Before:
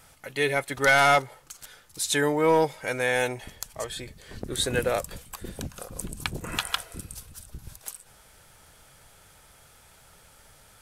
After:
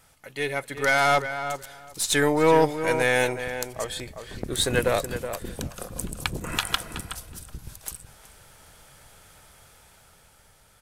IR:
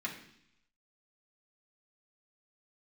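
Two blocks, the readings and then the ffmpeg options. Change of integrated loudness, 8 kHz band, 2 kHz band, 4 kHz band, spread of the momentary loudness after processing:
+1.0 dB, +2.0 dB, 0.0 dB, +1.5 dB, 18 LU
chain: -filter_complex "[0:a]dynaudnorm=framelen=240:gausssize=11:maxgain=6.5dB,aeval=exprs='0.531*(cos(1*acos(clip(val(0)/0.531,-1,1)))-cos(1*PI/2))+0.0422*(cos(4*acos(clip(val(0)/0.531,-1,1)))-cos(4*PI/2))':channel_layout=same,asplit=2[link_01][link_02];[link_02]adelay=372,lowpass=frequency=2400:poles=1,volume=-9dB,asplit=2[link_03][link_04];[link_04]adelay=372,lowpass=frequency=2400:poles=1,volume=0.16[link_05];[link_03][link_05]amix=inputs=2:normalize=0[link_06];[link_01][link_06]amix=inputs=2:normalize=0,volume=-4dB"

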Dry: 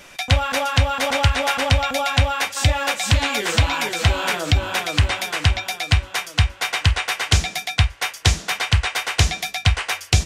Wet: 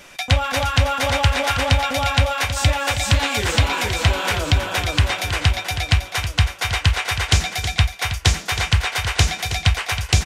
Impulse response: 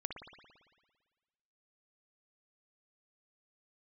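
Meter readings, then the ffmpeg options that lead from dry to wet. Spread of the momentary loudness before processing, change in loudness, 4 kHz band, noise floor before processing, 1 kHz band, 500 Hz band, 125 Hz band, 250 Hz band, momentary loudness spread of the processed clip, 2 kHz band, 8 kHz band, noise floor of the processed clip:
3 LU, +0.5 dB, +0.5 dB, −43 dBFS, +0.5 dB, +0.5 dB, +0.5 dB, +0.5 dB, 3 LU, +0.5 dB, +0.5 dB, −37 dBFS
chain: -af "aecho=1:1:252|254|320:0.133|0.112|0.316"

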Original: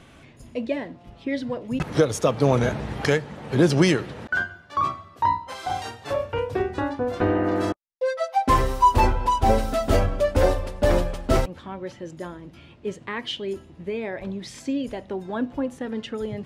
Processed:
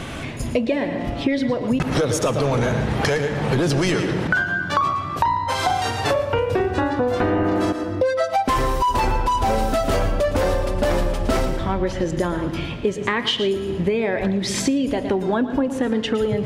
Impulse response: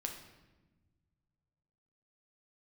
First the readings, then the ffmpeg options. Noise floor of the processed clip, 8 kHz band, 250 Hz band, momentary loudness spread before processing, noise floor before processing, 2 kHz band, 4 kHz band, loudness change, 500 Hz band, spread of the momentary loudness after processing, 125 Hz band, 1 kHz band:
−28 dBFS, +6.0 dB, +4.5 dB, 13 LU, −50 dBFS, +5.5 dB, +7.0 dB, +3.0 dB, +3.5 dB, 3 LU, +2.5 dB, +2.0 dB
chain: -filter_complex "[0:a]asplit=2[link_01][link_02];[1:a]atrim=start_sample=2205,adelay=113[link_03];[link_02][link_03]afir=irnorm=-1:irlink=0,volume=-10dB[link_04];[link_01][link_04]amix=inputs=2:normalize=0,apsyclip=18.5dB,acompressor=threshold=-18dB:ratio=8"

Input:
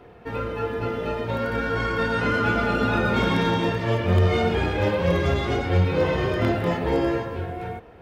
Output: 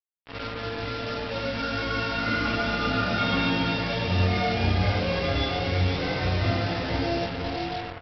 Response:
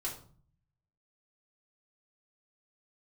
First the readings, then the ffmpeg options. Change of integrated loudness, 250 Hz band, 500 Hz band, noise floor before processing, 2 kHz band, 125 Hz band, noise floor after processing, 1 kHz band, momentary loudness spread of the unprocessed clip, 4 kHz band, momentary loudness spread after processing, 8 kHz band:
−3.0 dB, −3.5 dB, −6.0 dB, −47 dBFS, −1.5 dB, −3.0 dB, −38 dBFS, −2.5 dB, 8 LU, +4.0 dB, 8 LU, can't be measured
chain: -filter_complex "[0:a]aecho=1:1:47|128|508|704:0.562|0.631|0.596|0.282[link_01];[1:a]atrim=start_sample=2205,afade=type=out:start_time=0.37:duration=0.01,atrim=end_sample=16758,asetrate=79380,aresample=44100[link_02];[link_01][link_02]afir=irnorm=-1:irlink=0,aresample=11025,acrusher=bits=4:mix=0:aa=0.5,aresample=44100,highshelf=frequency=2200:gain=8,volume=-4.5dB"

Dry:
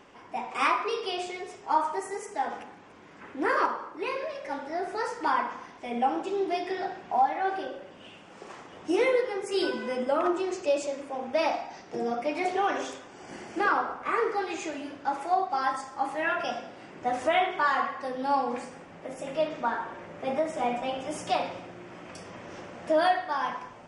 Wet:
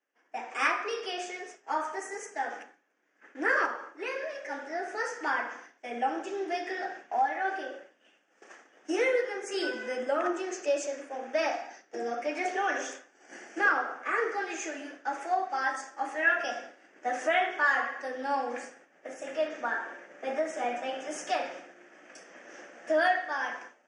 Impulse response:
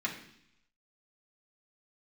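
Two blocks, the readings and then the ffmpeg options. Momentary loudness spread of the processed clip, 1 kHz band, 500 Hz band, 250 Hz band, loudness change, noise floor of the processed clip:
16 LU, −4.0 dB, −3.0 dB, −5.0 dB, −2.0 dB, −67 dBFS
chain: -af "agate=range=-33dB:threshold=-38dB:ratio=3:detection=peak,highpass=frequency=280:width=0.5412,highpass=frequency=280:width=1.3066,equalizer=frequency=390:width_type=q:width=4:gain=-4,equalizer=frequency=1000:width_type=q:width=4:gain=-9,equalizer=frequency=1700:width_type=q:width=4:gain=9,equalizer=frequency=4000:width_type=q:width=4:gain=-9,equalizer=frequency=6200:width_type=q:width=4:gain=8,lowpass=frequency=9200:width=0.5412,lowpass=frequency=9200:width=1.3066,volume=-1.5dB"

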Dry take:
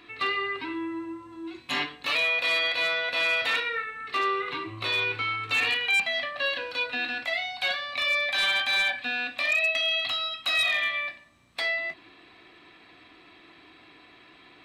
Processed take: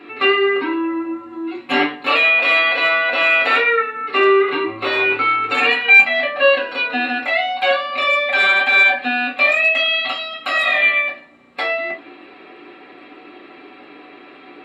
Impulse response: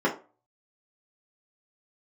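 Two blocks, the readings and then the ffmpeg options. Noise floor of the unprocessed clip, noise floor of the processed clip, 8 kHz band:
−54 dBFS, −42 dBFS, can't be measured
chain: -filter_complex "[0:a]lowshelf=frequency=180:gain=4.5[link_01];[1:a]atrim=start_sample=2205,asetrate=61740,aresample=44100[link_02];[link_01][link_02]afir=irnorm=-1:irlink=0"

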